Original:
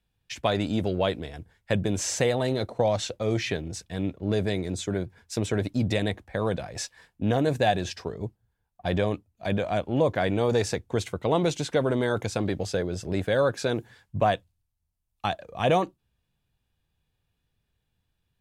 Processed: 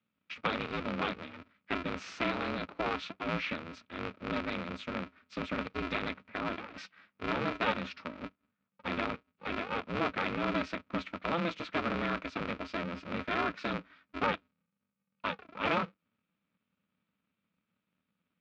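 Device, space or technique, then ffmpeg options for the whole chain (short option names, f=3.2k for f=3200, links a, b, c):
ring modulator pedal into a guitar cabinet: -af "aeval=exprs='val(0)*sgn(sin(2*PI*170*n/s))':c=same,highpass=110,equalizer=f=130:t=q:w=4:g=-5,equalizer=f=190:t=q:w=4:g=9,equalizer=f=370:t=q:w=4:g=-6,equalizer=f=770:t=q:w=4:g=-6,equalizer=f=1.3k:t=q:w=4:g=9,equalizer=f=2.4k:t=q:w=4:g=8,lowpass=f=4.1k:w=0.5412,lowpass=f=4.1k:w=1.3066,volume=-8.5dB"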